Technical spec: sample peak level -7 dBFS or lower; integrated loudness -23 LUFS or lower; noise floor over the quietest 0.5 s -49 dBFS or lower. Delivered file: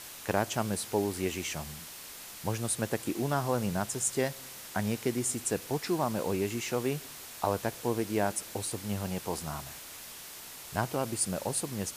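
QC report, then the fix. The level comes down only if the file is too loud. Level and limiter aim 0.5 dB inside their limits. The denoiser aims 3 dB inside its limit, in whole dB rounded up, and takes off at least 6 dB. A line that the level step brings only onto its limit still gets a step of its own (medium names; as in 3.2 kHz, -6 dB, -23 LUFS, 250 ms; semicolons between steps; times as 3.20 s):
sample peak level -12.0 dBFS: pass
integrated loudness -32.5 LUFS: pass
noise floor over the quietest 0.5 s -46 dBFS: fail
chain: noise reduction 6 dB, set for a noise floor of -46 dBFS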